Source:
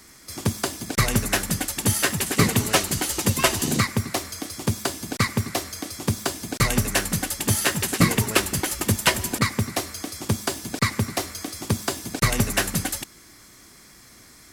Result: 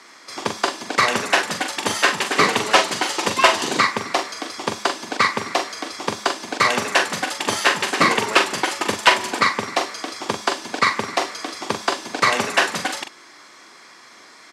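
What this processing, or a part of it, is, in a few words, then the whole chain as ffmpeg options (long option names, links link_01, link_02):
intercom: -filter_complex "[0:a]highpass=440,lowpass=4500,equalizer=frequency=1000:width_type=o:width=0.59:gain=4.5,asoftclip=type=tanh:threshold=-8dB,asplit=2[link_01][link_02];[link_02]adelay=43,volume=-7.5dB[link_03];[link_01][link_03]amix=inputs=2:normalize=0,volume=7dB"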